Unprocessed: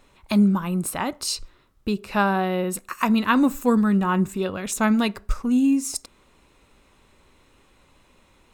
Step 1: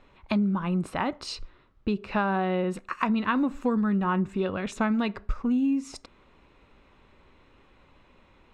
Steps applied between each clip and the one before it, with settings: low-pass 3.1 kHz 12 dB/octave; compression 6:1, threshold -22 dBFS, peak gain reduction 8.5 dB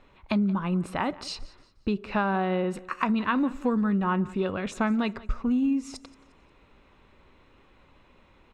feedback delay 177 ms, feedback 36%, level -20.5 dB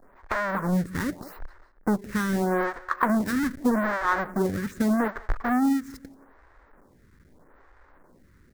square wave that keeps the level; resonant high shelf 2.2 kHz -7.5 dB, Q 3; lamp-driven phase shifter 0.81 Hz

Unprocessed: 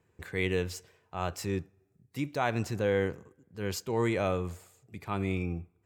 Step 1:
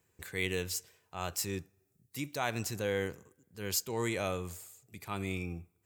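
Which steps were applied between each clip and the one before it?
pre-emphasis filter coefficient 0.8; trim +8 dB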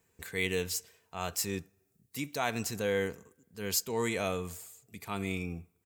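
comb 4.4 ms, depth 33%; trim +1.5 dB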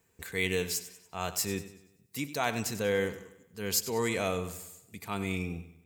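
modulated delay 96 ms, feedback 45%, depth 51 cents, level -14 dB; trim +1.5 dB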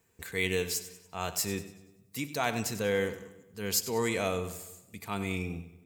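reverberation RT60 1.2 s, pre-delay 9 ms, DRR 16.5 dB

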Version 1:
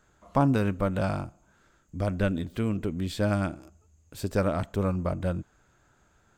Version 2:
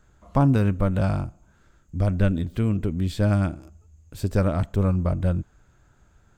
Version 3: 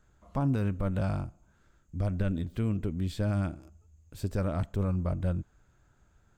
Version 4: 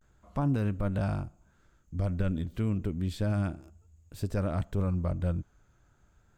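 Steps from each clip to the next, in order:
bass shelf 150 Hz +12 dB
peak limiter -12.5 dBFS, peak gain reduction 5.5 dB; trim -6.5 dB
vibrato 0.32 Hz 46 cents

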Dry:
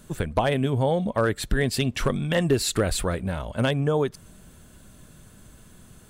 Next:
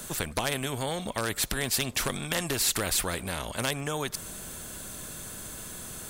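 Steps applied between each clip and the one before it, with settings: treble shelf 4.8 kHz +8 dB; band-stop 2.9 kHz, Q 25; spectrum-flattening compressor 2:1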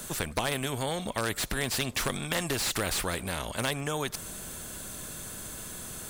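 slew-rate limiter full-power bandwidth 260 Hz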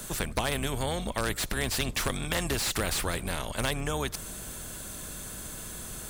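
octave divider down 2 oct, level 0 dB

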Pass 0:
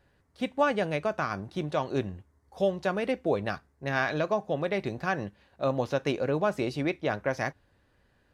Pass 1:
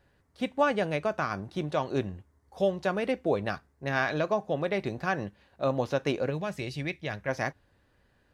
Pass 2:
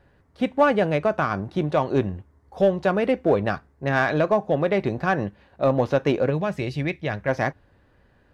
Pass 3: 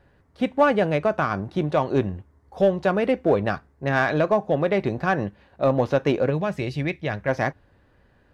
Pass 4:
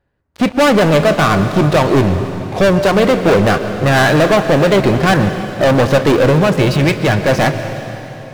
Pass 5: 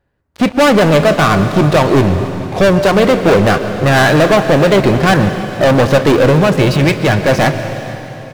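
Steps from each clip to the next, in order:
time-frequency box 6.30–7.29 s, 210–1600 Hz -8 dB
treble shelf 3.3 kHz -11.5 dB; in parallel at -8 dB: overload inside the chain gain 24.5 dB; on the sum: trim +5.5 dB
no audible change
waveshaping leveller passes 5; on a send at -8.5 dB: reverberation RT60 3.4 s, pre-delay 114 ms
delay 450 ms -23 dB; trim +1.5 dB

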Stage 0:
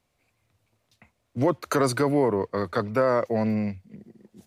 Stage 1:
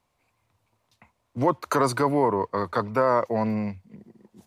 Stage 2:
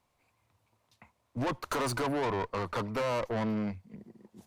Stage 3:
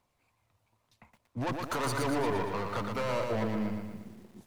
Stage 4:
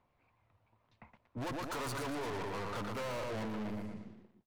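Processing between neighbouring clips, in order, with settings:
peaking EQ 970 Hz +9.5 dB 0.58 oct; trim -1.5 dB
valve stage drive 28 dB, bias 0.45
partial rectifier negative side -3 dB; phaser 0.92 Hz, delay 1.7 ms, feedback 20%; bit-crushed delay 117 ms, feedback 55%, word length 10-bit, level -4.5 dB
fade out at the end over 0.67 s; level-controlled noise filter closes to 2.4 kHz, open at -31 dBFS; saturation -38.5 dBFS, distortion -7 dB; trim +1.5 dB

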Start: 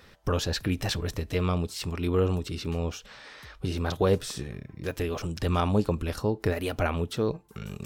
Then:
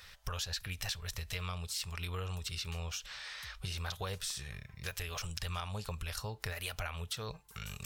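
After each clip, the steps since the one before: amplifier tone stack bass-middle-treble 10-0-10; compression 5:1, threshold -42 dBFS, peak gain reduction 13 dB; trim +6 dB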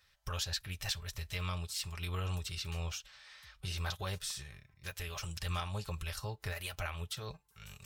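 transient shaper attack -3 dB, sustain +5 dB; comb of notches 240 Hz; upward expansion 2.5:1, over -50 dBFS; trim +5 dB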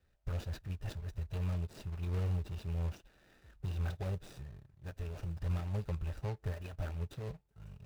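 median filter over 41 samples; trim +3.5 dB

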